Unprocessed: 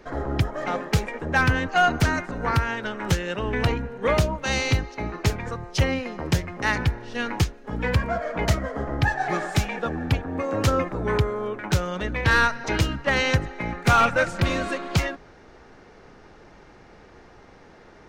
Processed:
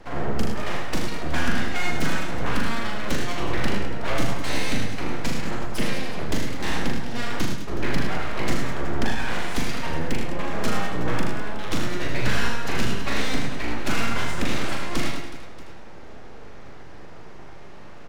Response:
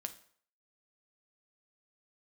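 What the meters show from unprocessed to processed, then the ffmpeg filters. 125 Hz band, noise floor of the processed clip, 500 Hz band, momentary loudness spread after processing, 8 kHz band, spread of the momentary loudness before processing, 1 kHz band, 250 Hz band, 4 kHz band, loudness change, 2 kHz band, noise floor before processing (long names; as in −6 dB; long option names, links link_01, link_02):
−6.0 dB, −35 dBFS, −4.5 dB, 19 LU, 0.0 dB, 8 LU, −5.0 dB, 0.0 dB, 0.0 dB, −3.5 dB, −4.0 dB, −50 dBFS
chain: -filter_complex "[0:a]lowshelf=frequency=480:gain=7,acrossover=split=140|1100|4300[link_01][link_02][link_03][link_04];[link_01]acompressor=threshold=-24dB:ratio=4[link_05];[link_02]acompressor=threshold=-31dB:ratio=4[link_06];[link_03]acompressor=threshold=-30dB:ratio=4[link_07];[link_04]acompressor=threshold=-39dB:ratio=4[link_08];[link_05][link_06][link_07][link_08]amix=inputs=4:normalize=0,aeval=exprs='abs(val(0))':channel_layout=same,aecho=1:1:40|104|206.4|370.2|632.4:0.631|0.398|0.251|0.158|0.1,asplit=2[link_09][link_10];[1:a]atrim=start_sample=2205,asetrate=25137,aresample=44100,adelay=78[link_11];[link_10][link_11]afir=irnorm=-1:irlink=0,volume=-6dB[link_12];[link_09][link_12]amix=inputs=2:normalize=0"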